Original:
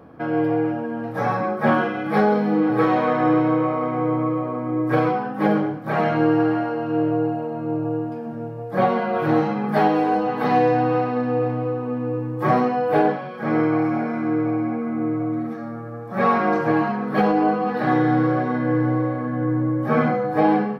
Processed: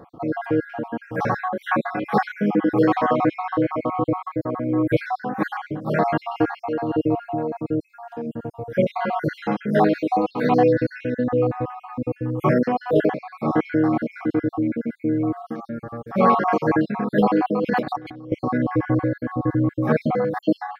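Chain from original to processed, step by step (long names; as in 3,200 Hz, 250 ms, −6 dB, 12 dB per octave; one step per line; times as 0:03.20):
time-frequency cells dropped at random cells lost 54%
0:15.54–0:16.28: comb filter 5.1 ms, depth 40%
0:17.62–0:18.32: compressor whose output falls as the input rises −28 dBFS, ratio −0.5
level +2.5 dB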